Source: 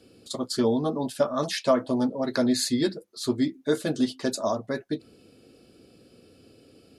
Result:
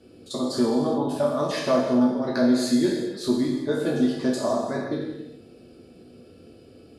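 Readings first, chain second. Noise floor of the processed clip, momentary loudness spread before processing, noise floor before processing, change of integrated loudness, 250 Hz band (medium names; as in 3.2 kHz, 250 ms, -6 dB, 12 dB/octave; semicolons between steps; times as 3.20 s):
-50 dBFS, 8 LU, -58 dBFS, +3.0 dB, +4.0 dB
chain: spectral sustain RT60 0.43 s; treble shelf 2.1 kHz -9 dB; in parallel at +1 dB: compression, threshold -30 dBFS, peak gain reduction 13.5 dB; on the sum: gated-style reverb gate 430 ms falling, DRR 0 dB; trim -4.5 dB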